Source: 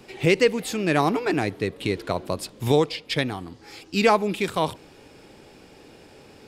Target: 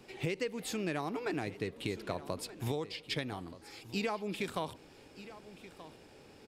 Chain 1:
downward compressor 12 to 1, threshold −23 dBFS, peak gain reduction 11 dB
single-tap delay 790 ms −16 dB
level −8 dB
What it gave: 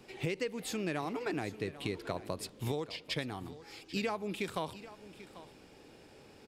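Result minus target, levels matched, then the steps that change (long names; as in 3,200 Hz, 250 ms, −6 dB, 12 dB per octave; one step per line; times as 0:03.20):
echo 438 ms early
change: single-tap delay 1,228 ms −16 dB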